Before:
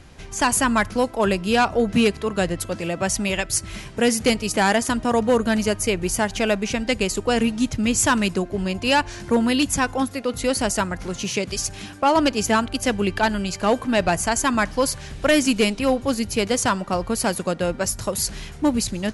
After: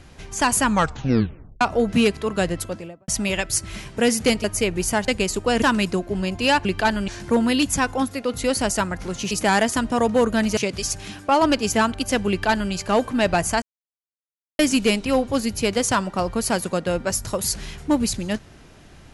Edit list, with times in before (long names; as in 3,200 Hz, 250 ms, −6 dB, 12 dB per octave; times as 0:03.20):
0:00.63: tape stop 0.98 s
0:02.56–0:03.08: fade out and dull
0:04.44–0:05.70: move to 0:11.31
0:06.34–0:06.89: remove
0:07.43–0:08.05: remove
0:13.03–0:13.46: duplicate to 0:09.08
0:14.36–0:15.33: silence